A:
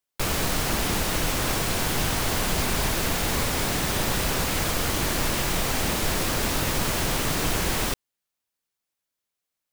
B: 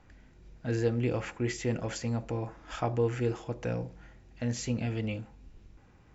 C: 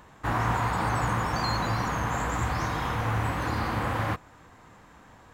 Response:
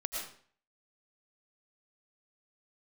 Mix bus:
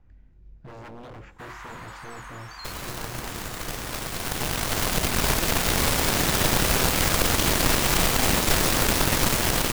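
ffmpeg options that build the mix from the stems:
-filter_complex "[0:a]dynaudnorm=f=280:g=17:m=11dB,aeval=exprs='0.794*(cos(1*acos(clip(val(0)/0.794,-1,1)))-cos(1*PI/2))+0.1*(cos(7*acos(clip(val(0)/0.794,-1,1)))-cos(7*PI/2))':c=same,adelay=2450,volume=1.5dB[a];[1:a]aemphasis=mode=reproduction:type=bsi,aeval=exprs='0.0447*(abs(mod(val(0)/0.0447+3,4)-2)-1)':c=same,volume=-9.5dB[b];[2:a]highpass=1.4k,adelay=1150,volume=-8dB[c];[a][b][c]amix=inputs=3:normalize=0,alimiter=limit=-7.5dB:level=0:latency=1:release=252"

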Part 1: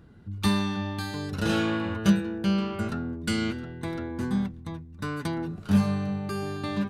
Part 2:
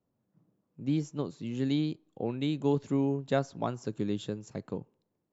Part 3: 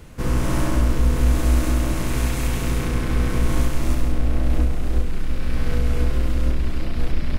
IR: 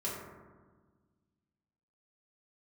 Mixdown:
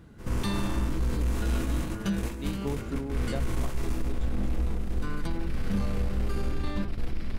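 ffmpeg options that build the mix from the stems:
-filter_complex "[0:a]volume=1.5dB[a];[1:a]volume=-2.5dB,asplit=2[b][c];[2:a]agate=range=-19dB:threshold=-18dB:ratio=16:detection=peak,volume=-1dB,asplit=2[d][e];[e]volume=-11.5dB[f];[c]apad=whole_len=304000[g];[a][g]sidechaincompress=threshold=-37dB:ratio=8:attack=16:release=401[h];[3:a]atrim=start_sample=2205[i];[f][i]afir=irnorm=-1:irlink=0[j];[h][b][d][j]amix=inputs=4:normalize=0,asoftclip=type=tanh:threshold=-9.5dB,alimiter=limit=-20dB:level=0:latency=1:release=443"

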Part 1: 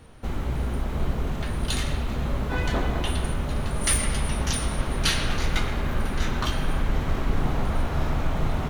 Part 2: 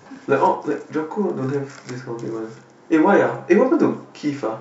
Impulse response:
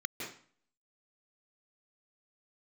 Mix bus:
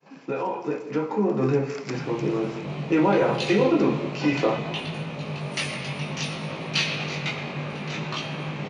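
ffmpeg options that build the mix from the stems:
-filter_complex "[0:a]flanger=delay=18.5:depth=2.8:speed=0.61,adelay=1700,volume=-6.5dB[a];[1:a]agate=range=-33dB:threshold=-41dB:ratio=3:detection=peak,alimiter=limit=-14dB:level=0:latency=1:release=58,volume=-6dB,asplit=2[b][c];[c]volume=-14.5dB[d];[2:a]atrim=start_sample=2205[e];[d][e]afir=irnorm=-1:irlink=0[f];[a][b][f]amix=inputs=3:normalize=0,dynaudnorm=f=370:g=5:m=7dB,highpass=f=150:w=0.5412,highpass=f=150:w=1.3066,equalizer=f=150:t=q:w=4:g=9,equalizer=f=240:t=q:w=4:g=-3,equalizer=f=530:t=q:w=4:g=3,equalizer=f=1.5k:t=q:w=4:g=-6,equalizer=f=2.5k:t=q:w=4:g=10,equalizer=f=4.4k:t=q:w=4:g=3,lowpass=f=6.5k:w=0.5412,lowpass=f=6.5k:w=1.3066"

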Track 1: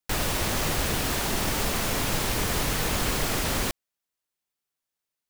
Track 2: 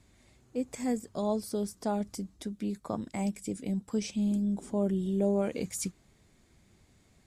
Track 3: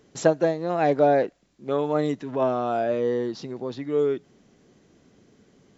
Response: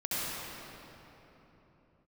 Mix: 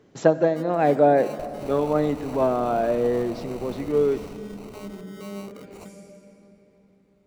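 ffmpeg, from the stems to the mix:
-filter_complex "[0:a]adelay=1300,volume=-8.5dB[a];[1:a]equalizer=f=1.7k:t=o:w=2.5:g=7.5,volume=-12.5dB,asplit=2[b][c];[c]volume=-11dB[d];[2:a]highpass=f=100:w=0.5412,highpass=f=100:w=1.3066,highshelf=f=3.9k:g=-12,volume=1.5dB,asplit=3[e][f][g];[f]volume=-21dB[h];[g]apad=whole_len=291021[i];[a][i]sidechaingate=range=-11dB:threshold=-48dB:ratio=16:detection=peak[j];[j][b]amix=inputs=2:normalize=0,acrusher=samples=26:mix=1:aa=0.000001,alimiter=level_in=8.5dB:limit=-24dB:level=0:latency=1:release=284,volume=-8.5dB,volume=0dB[k];[3:a]atrim=start_sample=2205[l];[d][h]amix=inputs=2:normalize=0[m];[m][l]afir=irnorm=-1:irlink=0[n];[e][k][n]amix=inputs=3:normalize=0"

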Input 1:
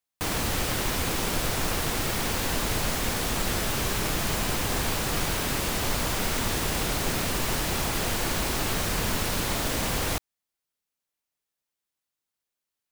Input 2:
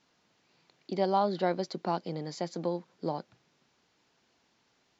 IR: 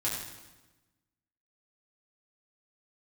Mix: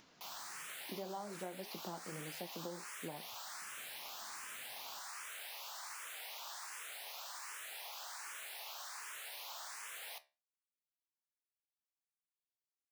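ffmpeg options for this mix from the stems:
-filter_complex "[0:a]highpass=f=750:w=0.5412,highpass=f=750:w=1.3066,asplit=2[a][b];[b]afreqshift=1.3[c];[a][c]amix=inputs=2:normalize=1,volume=-10dB[d];[1:a]acompressor=mode=upward:threshold=-43dB:ratio=2.5,flanger=delay=2.7:depth=6.6:regen=-66:speed=1.2:shape=triangular,volume=-1dB[e];[d][e]amix=inputs=2:normalize=0,flanger=delay=10:depth=4.3:regen=-72:speed=1.7:shape=sinusoidal,acompressor=threshold=-41dB:ratio=6"

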